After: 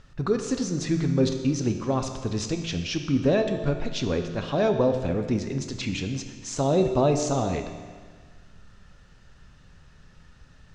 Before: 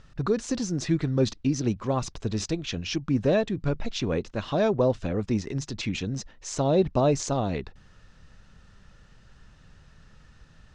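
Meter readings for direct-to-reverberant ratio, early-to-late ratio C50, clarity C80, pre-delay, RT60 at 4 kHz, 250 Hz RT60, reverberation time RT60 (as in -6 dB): 5.5 dB, 7.5 dB, 8.5 dB, 6 ms, 1.5 s, 1.6 s, 1.6 s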